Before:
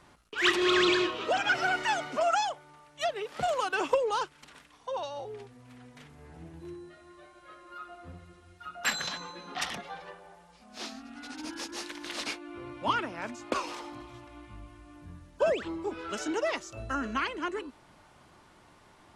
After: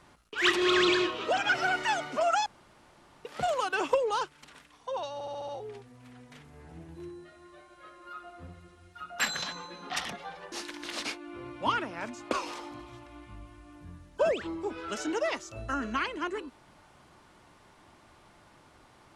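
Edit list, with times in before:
2.46–3.25 room tone
5.14 stutter 0.07 s, 6 plays
10.17–11.73 cut

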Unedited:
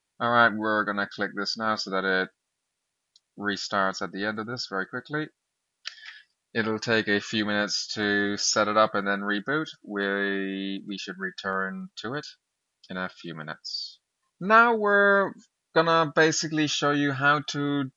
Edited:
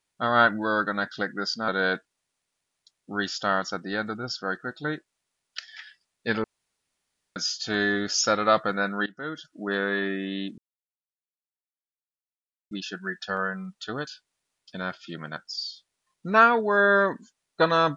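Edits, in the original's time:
1.68–1.97 cut
6.73–7.65 room tone
9.35–9.9 fade in, from -20.5 dB
10.87 insert silence 2.13 s

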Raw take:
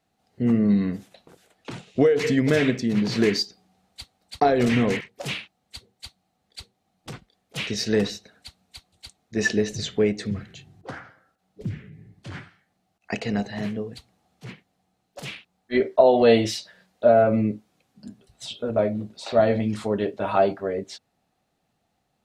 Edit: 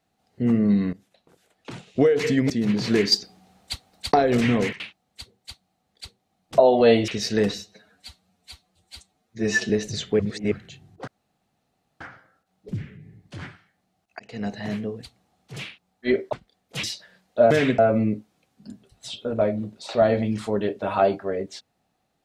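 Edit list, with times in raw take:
0.93–1.9 fade in, from -18 dB
2.5–2.78 move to 17.16
3.4–4.42 gain +8.5 dB
5.08–5.35 cut
7.13–7.64 swap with 15.99–16.49
8.14–9.55 stretch 1.5×
10.05–10.37 reverse
10.93 insert room tone 0.93 s
13.12–13.52 fade in
14.49–15.23 cut

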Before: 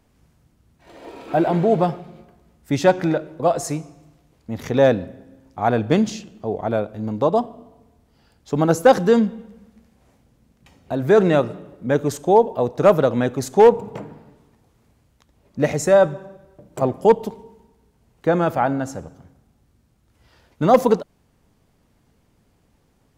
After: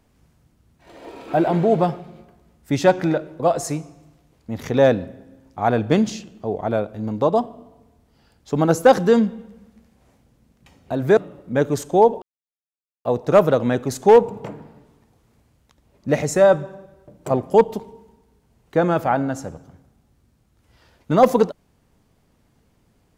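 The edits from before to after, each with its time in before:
11.17–11.51 cut
12.56 insert silence 0.83 s

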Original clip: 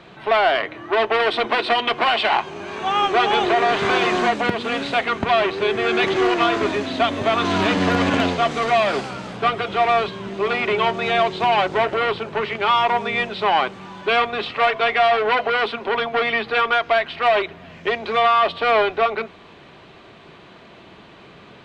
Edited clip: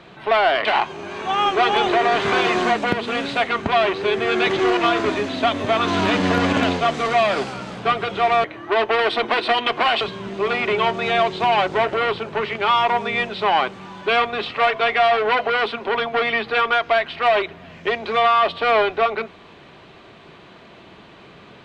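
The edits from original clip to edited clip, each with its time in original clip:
0.65–2.22 move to 10.01

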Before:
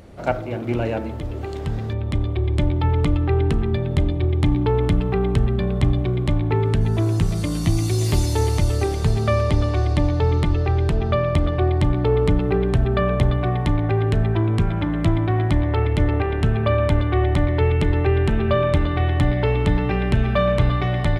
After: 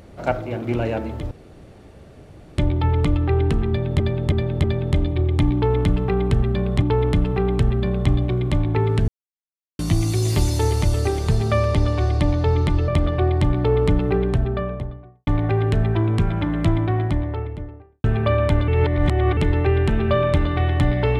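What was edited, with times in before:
1.31–2.58 room tone
3.68–4 loop, 4 plays
4.58–5.86 loop, 2 plays
6.84–7.55 mute
10.64–11.28 cut
12.46–13.67 studio fade out
15.06–16.44 studio fade out
17.08–17.77 reverse

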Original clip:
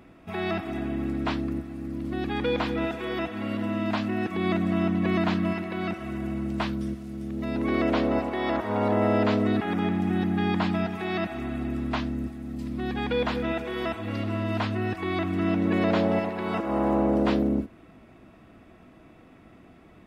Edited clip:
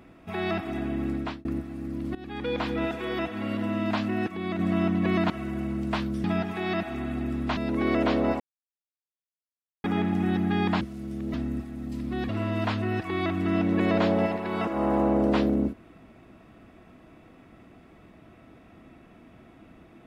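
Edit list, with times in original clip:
1.14–1.45 fade out
2.15–3.01 fade in equal-power, from -16 dB
4.28–4.59 gain -5.5 dB
5.3–5.97 cut
6.91–7.44 swap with 10.68–12.01
8.27–9.71 mute
12.96–14.22 cut

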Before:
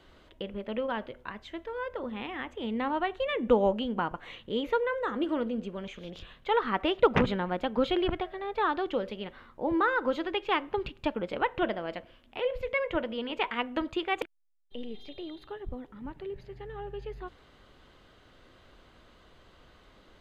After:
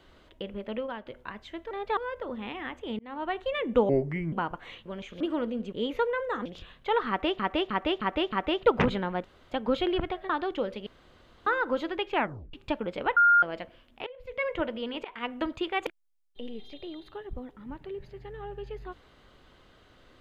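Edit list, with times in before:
0.72–1.06 fade out, to -10 dB
2.73–3.1 fade in
3.63–3.93 speed 69%
4.46–5.19 swap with 5.71–6.06
6.69–7 loop, 5 plays
7.61 insert room tone 0.27 s
8.39–8.65 move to 1.71
9.22–9.82 room tone
10.47 tape stop 0.42 s
11.52–11.78 bleep 1410 Hz -16 dBFS
12.42–12.8 fade in quadratic, from -18 dB
13.4–13.68 fade in, from -21 dB

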